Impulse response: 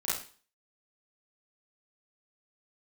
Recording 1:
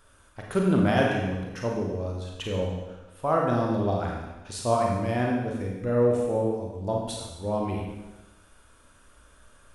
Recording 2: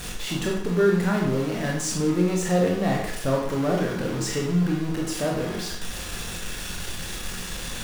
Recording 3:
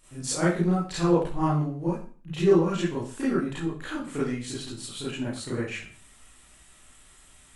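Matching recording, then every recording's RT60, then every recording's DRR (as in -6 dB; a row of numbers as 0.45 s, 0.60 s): 3; 1.1 s, 0.65 s, 0.40 s; -1.5 dB, -1.5 dB, -10.0 dB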